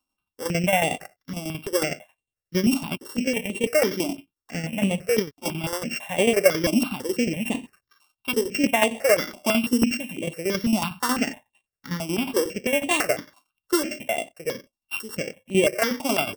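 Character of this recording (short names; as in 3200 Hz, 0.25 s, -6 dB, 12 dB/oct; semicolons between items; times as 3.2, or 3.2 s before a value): a buzz of ramps at a fixed pitch in blocks of 16 samples; tremolo saw down 11 Hz, depth 70%; notches that jump at a steady rate 6 Hz 470–5200 Hz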